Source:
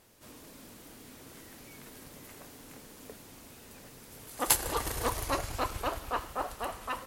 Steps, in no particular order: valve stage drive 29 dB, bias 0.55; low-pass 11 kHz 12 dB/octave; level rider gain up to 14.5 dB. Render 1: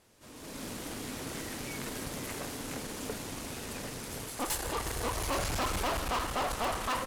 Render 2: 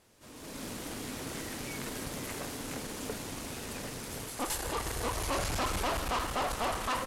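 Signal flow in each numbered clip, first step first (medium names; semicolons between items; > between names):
level rider > low-pass > valve stage; level rider > valve stage > low-pass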